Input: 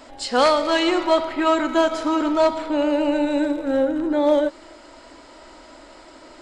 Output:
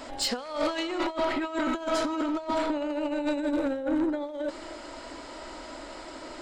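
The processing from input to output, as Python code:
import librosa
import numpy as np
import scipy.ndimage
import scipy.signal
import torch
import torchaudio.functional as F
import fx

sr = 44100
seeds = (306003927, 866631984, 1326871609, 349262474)

y = fx.over_compress(x, sr, threshold_db=-24.0, ratio=-0.5)
y = 10.0 ** (-18.5 / 20.0) * np.tanh(y / 10.0 ** (-18.5 / 20.0))
y = y * 10.0 ** (-2.0 / 20.0)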